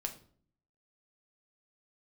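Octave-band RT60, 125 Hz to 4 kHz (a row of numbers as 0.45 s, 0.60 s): 0.80 s, 0.75 s, 0.55 s, 0.45 s, 0.40 s, 0.40 s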